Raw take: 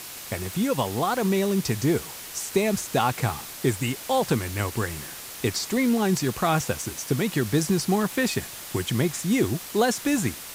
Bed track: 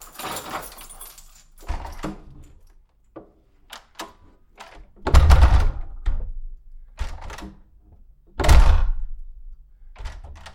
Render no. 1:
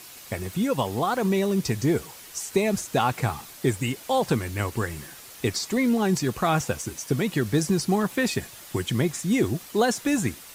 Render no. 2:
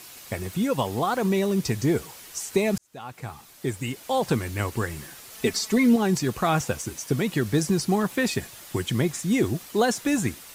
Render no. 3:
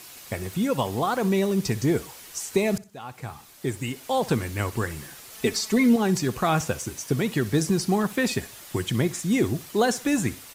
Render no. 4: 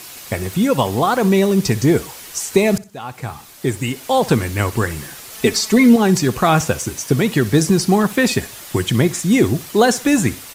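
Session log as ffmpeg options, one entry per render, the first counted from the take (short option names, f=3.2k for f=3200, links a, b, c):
-af "afftdn=nr=7:nf=-39"
-filter_complex "[0:a]asettb=1/sr,asplit=3[a][b][c];[a]atrim=end=5.324[d];[b]atrim=start=5.32:end=5.96,asetpts=PTS-STARTPTS,afade=t=in:d=0.004:c=qsin,afade=t=out:st=0.636:d=0.004:c=qsin,aecho=1:1:4.6:0.71,atrim=end_sample=28224[e];[c]atrim=start=5.956[f];[d][e]acrossfade=d=0.004:c1=hsin:c2=qsin[g];[g][f]acrossfade=d=0.004:c1=qsin:c2=hsin,asplit=2[h][i];[h]atrim=end=2.78,asetpts=PTS-STARTPTS,afade=t=out:st=2.776:d=0.004:c=hsin[j];[i]atrim=start=2.78,asetpts=PTS-STARTPTS,afade=t=in:d=1.58[k];[j][k]concat=n=2:v=0:a=1"
-af "aecho=1:1:62|124|186:0.112|0.0348|0.0108"
-af "volume=8.5dB"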